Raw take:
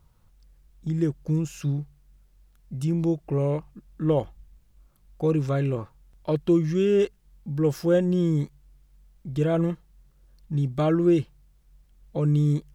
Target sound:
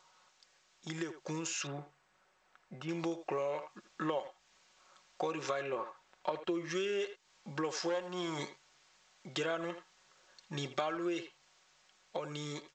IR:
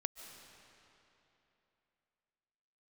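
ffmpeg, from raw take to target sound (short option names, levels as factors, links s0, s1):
-filter_complex "[0:a]asettb=1/sr,asplit=3[s0][s1][s2];[s0]atrim=end=7.894[s3];[s1]atrim=start=7.89:end=8.39,asetpts=PTS-STARTPTS,afade=t=in:d=0.004:c=qsin,afade=t=out:st=0.496:d=0.004:c=qsin,aeval=exprs='if(lt(val(0),0),0.447*val(0),val(0))':c=same[s4];[s2]atrim=start=8.386[s5];[s3][s4]acrossfade=d=0.004:c1=hsin:c2=qsin[s6];[s6][s5]acrossfade=d=0.004:c1=qsin:c2=hsin,highpass=830,aecho=1:1:5.4:0.37,asplit=2[s7][s8];[s8]adelay=80,highpass=300,lowpass=3400,asoftclip=type=hard:threshold=0.0422,volume=0.224[s9];[s7][s9]amix=inputs=2:normalize=0,acompressor=threshold=0.00562:ratio=8,asplit=3[s10][s11][s12];[s10]afade=t=out:st=5.61:d=0.02[s13];[s11]aemphasis=mode=reproduction:type=75fm,afade=t=in:st=5.61:d=0.02,afade=t=out:st=6.69:d=0.02[s14];[s12]afade=t=in:st=6.69:d=0.02[s15];[s13][s14][s15]amix=inputs=3:normalize=0,dynaudnorm=f=290:g=9:m=1.5,asettb=1/sr,asplit=3[s16][s17][s18];[s16]atrim=end=1.674[s19];[s17]atrim=start=1.67:end=2.89,asetpts=PTS-STARTPTS,afade=t=in:d=0.004:c=qsin,afade=t=out:st=1.216:d=0.004:c=qsin,lowpass=1800[s20];[s18]atrim=start=2.886[s21];[s19][s20]acrossfade=d=0.004:c1=hsin:c2=qsin[s22];[s22][s21]acrossfade=d=0.004:c1=qsin:c2=hsin,volume=2.66" -ar 16000 -c:a g722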